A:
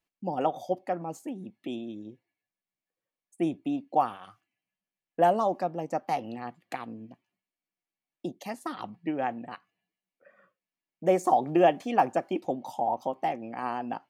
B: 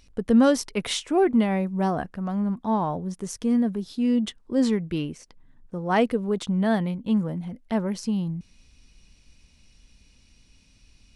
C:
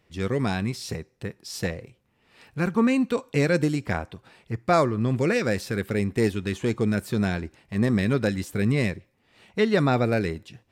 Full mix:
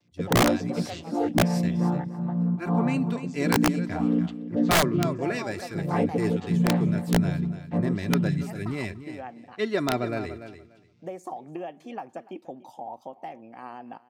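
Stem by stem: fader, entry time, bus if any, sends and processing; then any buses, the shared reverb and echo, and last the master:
−7.5 dB, 0.00 s, no send, echo send −20 dB, downward compressor 6 to 1, threshold −25 dBFS, peak gain reduction 9.5 dB
−0.5 dB, 0.00 s, no send, echo send −13 dB, channel vocoder with a chord as carrier major triad, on A#2
−7.5 dB, 0.00 s, no send, echo send −11.5 dB, comb filter 3 ms, depth 53%; multiband upward and downward expander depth 70%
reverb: not used
echo: repeating echo 291 ms, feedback 17%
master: high-shelf EQ 7,800 Hz −2.5 dB; wrap-around overflow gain 13 dB

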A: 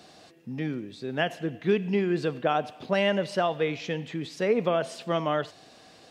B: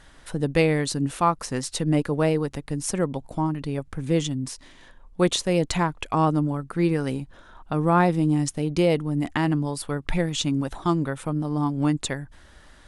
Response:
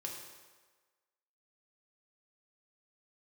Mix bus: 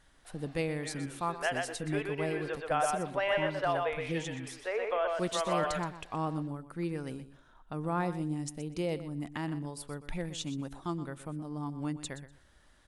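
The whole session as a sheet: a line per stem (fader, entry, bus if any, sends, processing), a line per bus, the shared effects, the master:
−2.5 dB, 0.25 s, no send, echo send −3.5 dB, high-pass filter 350 Hz 24 dB per octave; three-way crossover with the lows and the highs turned down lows −17 dB, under 530 Hz, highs −16 dB, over 2,700 Hz
−13.0 dB, 0.00 s, no send, echo send −13.5 dB, no processing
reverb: not used
echo: repeating echo 123 ms, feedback 18%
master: high-shelf EQ 9,900 Hz +6.5 dB

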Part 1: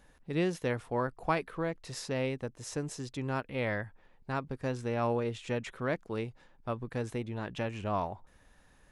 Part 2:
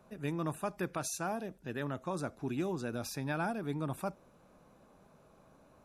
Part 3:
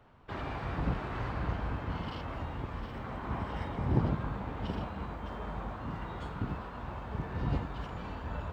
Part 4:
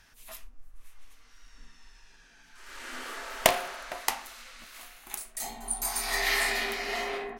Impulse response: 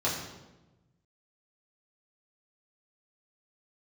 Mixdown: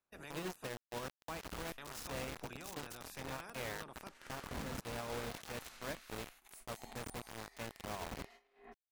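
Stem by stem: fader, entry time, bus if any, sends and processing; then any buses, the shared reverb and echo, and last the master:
−12.5 dB, 0.00 s, bus A, no send, high-shelf EQ 3,200 Hz +6 dB; mains-hum notches 50/100/150/200/250/300/350/400 Hz
−2.5 dB, 0.00 s, muted 0:00.76–0:01.78, bus B, no send, ceiling on every frequency bin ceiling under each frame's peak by 20 dB
−16.0 dB, 0.65 s, bus A, no send, mains-hum notches 60/120/180/240/300 Hz; comb filter 4.1 ms, depth 76%
−15.5 dB, 1.35 s, bus B, no send, compressor whose output falls as the input rises −42 dBFS, ratio −1
bus A: 0.0 dB, bit reduction 7 bits; brickwall limiter −35 dBFS, peak gain reduction 5 dB
bus B: 0.0 dB, transient designer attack −8 dB, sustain −3 dB; downward compressor 10 to 1, threshold −48 dBFS, peak gain reduction 14 dB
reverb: not used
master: noise gate −57 dBFS, range −27 dB

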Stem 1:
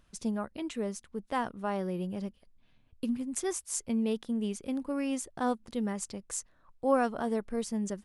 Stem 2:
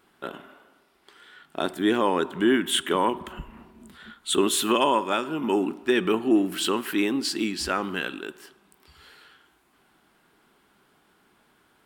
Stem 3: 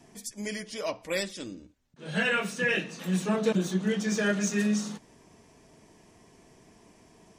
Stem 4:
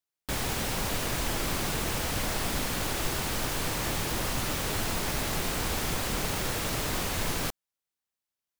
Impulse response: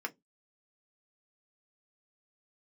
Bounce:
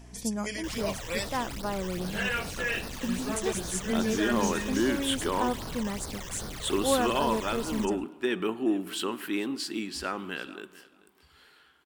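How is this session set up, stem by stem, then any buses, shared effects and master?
0.0 dB, 0.00 s, no send, no echo send, mains hum 60 Hz, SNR 16 dB
−6.5 dB, 2.35 s, no send, echo send −20 dB, no processing
+3.0 dB, 0.00 s, no send, no echo send, low-shelf EQ 380 Hz −9 dB; automatic ducking −6 dB, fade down 1.70 s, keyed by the first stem
−6.5 dB, 0.35 s, no send, no echo send, comparator with hysteresis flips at −37 dBFS; all-pass phaser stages 12, 2.5 Hz, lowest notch 220–2,800 Hz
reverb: not used
echo: repeating echo 437 ms, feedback 16%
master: no processing

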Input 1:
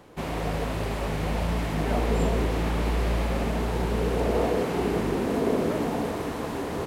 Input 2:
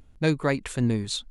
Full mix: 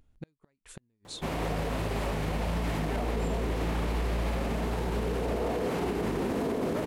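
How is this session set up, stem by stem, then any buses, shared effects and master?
0.0 dB, 1.05 s, no send, no processing
−11.0 dB, 0.00 s, no send, gate with flip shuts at −18 dBFS, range −40 dB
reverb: not used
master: brickwall limiter −22 dBFS, peak gain reduction 9 dB

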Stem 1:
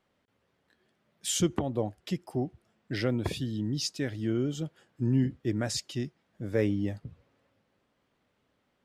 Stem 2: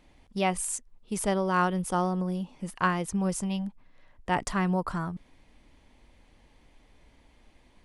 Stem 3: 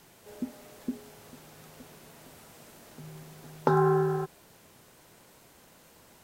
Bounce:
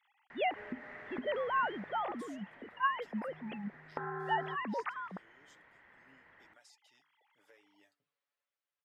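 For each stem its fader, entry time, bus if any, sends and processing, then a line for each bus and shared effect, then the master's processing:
−18.0 dB, 0.95 s, bus A, no send, Bessel high-pass filter 1,300 Hz, order 2; downward compressor 6 to 1, threshold −45 dBFS, peak gain reduction 16.5 dB; comb filter 6.9 ms, depth 67%
−5.5 dB, 0.00 s, no bus, no send, three sine waves on the formant tracks; Bessel high-pass filter 420 Hz
0:01.71 −4.5 dB → 0:02.29 −12.5 dB, 0.30 s, bus A, no send, low-pass with resonance 1,900 Hz, resonance Q 7.7; parametric band 1,200 Hz +5 dB 2.2 octaves
bus A: 0.0 dB, hum removal 145 Hz, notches 3; downward compressor 6 to 1, threshold −37 dBFS, peak gain reduction 11 dB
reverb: not used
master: no processing

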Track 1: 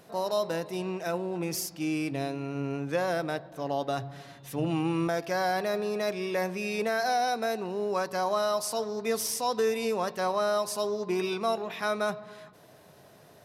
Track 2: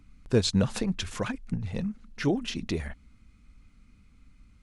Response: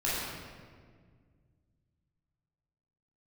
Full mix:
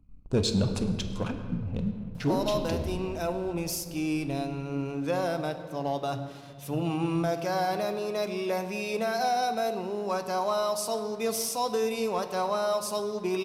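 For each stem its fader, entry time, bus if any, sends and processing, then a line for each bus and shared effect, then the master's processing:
−4.5 dB, 2.15 s, send −17.5 dB, no processing
−5.5 dB, 0.00 s, send −14 dB, adaptive Wiener filter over 25 samples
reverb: on, RT60 1.8 s, pre-delay 13 ms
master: parametric band 1,800 Hz −10 dB 0.3 octaves; leveller curve on the samples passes 1

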